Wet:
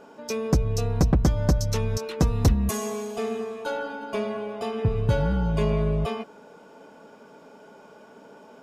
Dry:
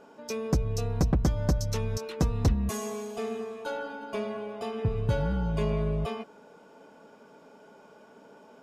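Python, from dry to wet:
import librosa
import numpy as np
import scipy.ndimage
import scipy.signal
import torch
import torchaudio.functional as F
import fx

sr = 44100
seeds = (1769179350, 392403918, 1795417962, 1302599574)

y = fx.high_shelf(x, sr, hz=10000.0, db=11.5, at=(2.27, 2.71))
y = y * 10.0 ** (4.5 / 20.0)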